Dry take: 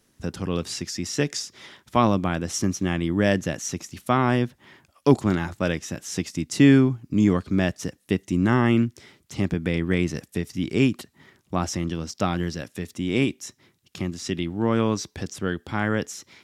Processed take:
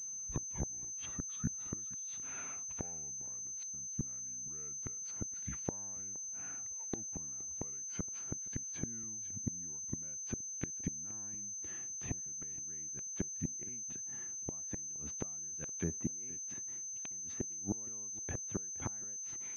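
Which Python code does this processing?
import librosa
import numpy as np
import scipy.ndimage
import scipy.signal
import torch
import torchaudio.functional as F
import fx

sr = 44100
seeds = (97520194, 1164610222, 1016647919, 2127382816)

p1 = fx.speed_glide(x, sr, from_pct=67, to_pct=101)
p2 = fx.gate_flip(p1, sr, shuts_db=-18.0, range_db=-33)
p3 = p2 + fx.echo_single(p2, sr, ms=469, db=-21.5, dry=0)
p4 = fx.env_lowpass_down(p3, sr, base_hz=1000.0, full_db=-30.5)
p5 = fx.pwm(p4, sr, carrier_hz=6200.0)
y = p5 * librosa.db_to_amplitude(-5.0)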